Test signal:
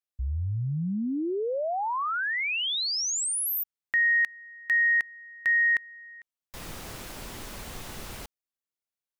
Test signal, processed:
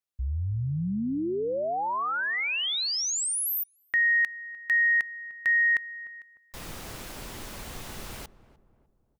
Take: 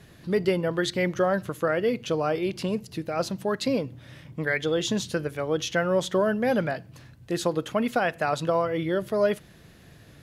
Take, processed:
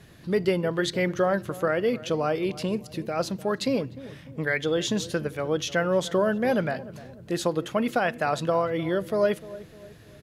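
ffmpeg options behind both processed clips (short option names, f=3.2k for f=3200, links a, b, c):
-filter_complex "[0:a]asplit=2[a][b];[b]adelay=301,lowpass=f=950:p=1,volume=-16dB,asplit=2[c][d];[d]adelay=301,lowpass=f=950:p=1,volume=0.48,asplit=2[e][f];[f]adelay=301,lowpass=f=950:p=1,volume=0.48,asplit=2[g][h];[h]adelay=301,lowpass=f=950:p=1,volume=0.48[i];[a][c][e][g][i]amix=inputs=5:normalize=0"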